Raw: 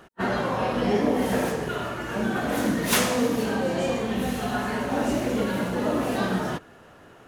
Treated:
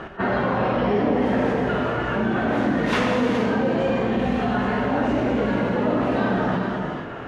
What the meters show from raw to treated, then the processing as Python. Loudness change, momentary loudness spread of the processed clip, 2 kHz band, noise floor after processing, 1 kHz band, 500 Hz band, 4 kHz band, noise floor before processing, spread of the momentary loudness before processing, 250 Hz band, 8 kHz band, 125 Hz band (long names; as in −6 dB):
+3.5 dB, 3 LU, +3.5 dB, −33 dBFS, +4.0 dB, +4.0 dB, −2.0 dB, −51 dBFS, 6 LU, +4.0 dB, below −15 dB, +5.0 dB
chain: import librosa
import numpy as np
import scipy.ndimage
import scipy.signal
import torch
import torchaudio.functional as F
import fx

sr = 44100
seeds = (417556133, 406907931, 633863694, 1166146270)

y = scipy.signal.sosfilt(scipy.signal.butter(2, 2600.0, 'lowpass', fs=sr, output='sos'), x)
y = fx.rev_gated(y, sr, seeds[0], gate_ms=490, shape='flat', drr_db=3.5)
y = fx.env_flatten(y, sr, amount_pct=50)